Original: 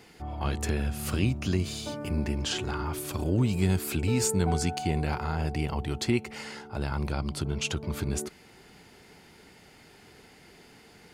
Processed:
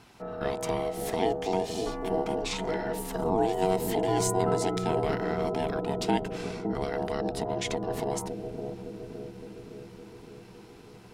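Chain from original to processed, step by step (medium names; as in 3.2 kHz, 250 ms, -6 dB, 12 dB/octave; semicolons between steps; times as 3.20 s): ring modulator 560 Hz; bass shelf 310 Hz +5 dB; bucket-brigade echo 562 ms, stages 2048, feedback 68%, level -4 dB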